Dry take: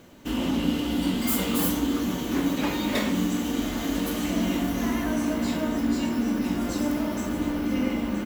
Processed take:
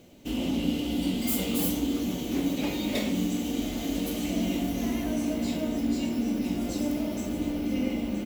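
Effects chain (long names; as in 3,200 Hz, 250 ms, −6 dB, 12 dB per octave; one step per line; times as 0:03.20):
flat-topped bell 1,300 Hz −9.5 dB 1.2 octaves
level −2.5 dB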